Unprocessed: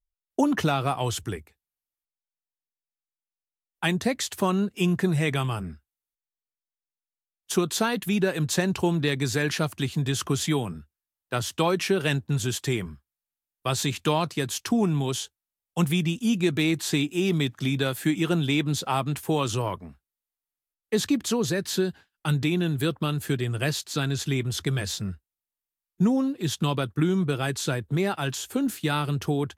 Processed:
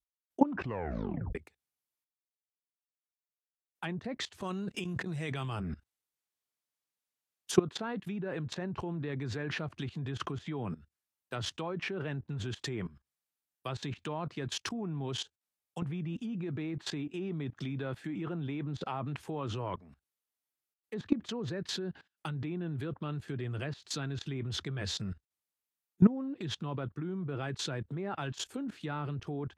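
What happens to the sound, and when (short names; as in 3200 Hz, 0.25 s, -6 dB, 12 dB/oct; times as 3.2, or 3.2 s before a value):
0.5 tape stop 0.85 s
4.4–7.54 negative-ratio compressor -33 dBFS
whole clip: HPF 74 Hz 12 dB/oct; treble ducked by the level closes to 1600 Hz, closed at -21 dBFS; level quantiser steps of 19 dB; gain +2 dB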